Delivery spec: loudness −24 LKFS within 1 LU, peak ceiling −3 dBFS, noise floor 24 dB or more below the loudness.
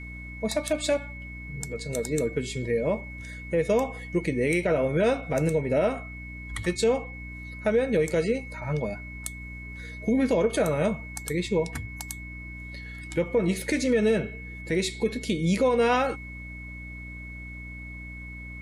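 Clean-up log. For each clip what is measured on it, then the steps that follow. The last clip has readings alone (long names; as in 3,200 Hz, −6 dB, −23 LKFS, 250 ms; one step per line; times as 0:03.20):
mains hum 60 Hz; hum harmonics up to 300 Hz; level of the hum −38 dBFS; interfering tone 2,200 Hz; level of the tone −41 dBFS; integrated loudness −27.0 LKFS; sample peak −13.5 dBFS; target loudness −24.0 LKFS
→ hum removal 60 Hz, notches 5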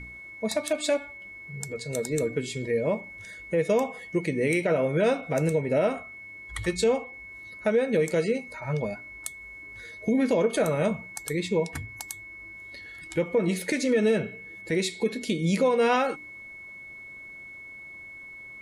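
mains hum none found; interfering tone 2,200 Hz; level of the tone −41 dBFS
→ notch filter 2,200 Hz, Q 30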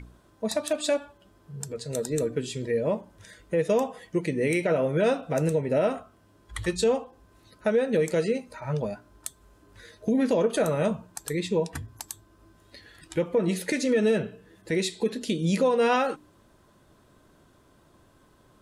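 interfering tone none found; integrated loudness −27.0 LKFS; sample peak −13.5 dBFS; target loudness −24.0 LKFS
→ level +3 dB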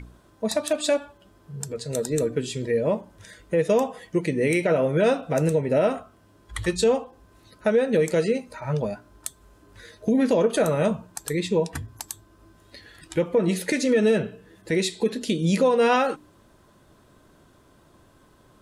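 integrated loudness −24.0 LKFS; sample peak −10.5 dBFS; background noise floor −57 dBFS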